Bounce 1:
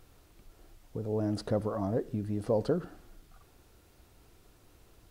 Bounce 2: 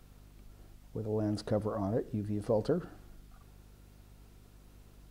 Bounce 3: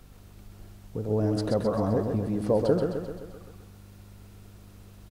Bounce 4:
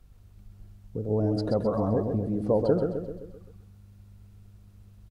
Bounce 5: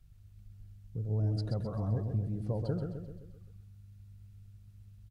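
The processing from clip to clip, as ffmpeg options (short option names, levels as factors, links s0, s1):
-af "aeval=exprs='val(0)+0.002*(sin(2*PI*50*n/s)+sin(2*PI*2*50*n/s)/2+sin(2*PI*3*50*n/s)/3+sin(2*PI*4*50*n/s)/4+sin(2*PI*5*50*n/s)/5)':c=same,volume=0.841"
-af "aecho=1:1:130|260|390|520|650|780|910:0.562|0.315|0.176|0.0988|0.0553|0.031|0.0173,volume=1.88"
-af "afftdn=nr=12:nf=-38"
-af "equalizer=f=125:t=o:w=1:g=8,equalizer=f=250:t=o:w=1:g=-8,equalizer=f=500:t=o:w=1:g=-8,equalizer=f=1000:t=o:w=1:g=-7,volume=0.531"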